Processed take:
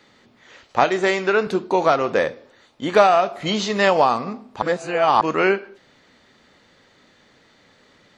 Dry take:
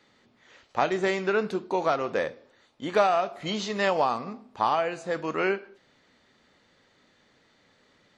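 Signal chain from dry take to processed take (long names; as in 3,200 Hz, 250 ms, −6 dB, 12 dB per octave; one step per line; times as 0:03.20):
0:00.84–0:01.47: low-shelf EQ 190 Hz −10.5 dB
0:04.62–0:05.21: reverse
level +8 dB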